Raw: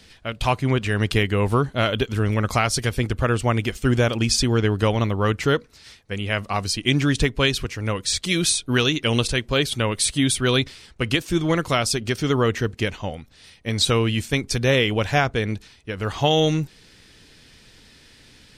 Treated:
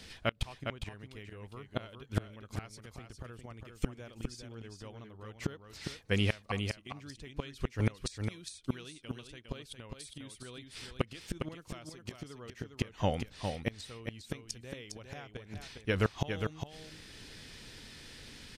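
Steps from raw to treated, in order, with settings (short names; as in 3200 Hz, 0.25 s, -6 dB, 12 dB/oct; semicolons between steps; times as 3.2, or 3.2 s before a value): flipped gate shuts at -14 dBFS, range -28 dB; on a send: echo 0.407 s -6 dB; on the sum: gain -1 dB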